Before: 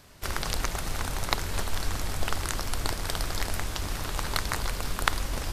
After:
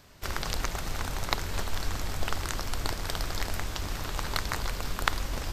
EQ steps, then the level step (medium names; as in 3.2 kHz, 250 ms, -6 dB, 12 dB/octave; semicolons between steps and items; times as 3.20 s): peaking EQ 10 kHz -7.5 dB 0.37 oct; -1.5 dB